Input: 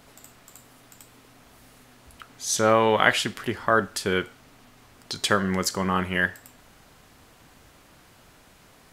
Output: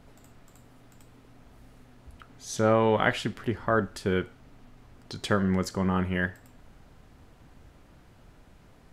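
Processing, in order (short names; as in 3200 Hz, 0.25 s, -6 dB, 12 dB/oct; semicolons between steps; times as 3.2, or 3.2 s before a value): tilt -2.5 dB/oct; notch 1100 Hz, Q 30; gain -5 dB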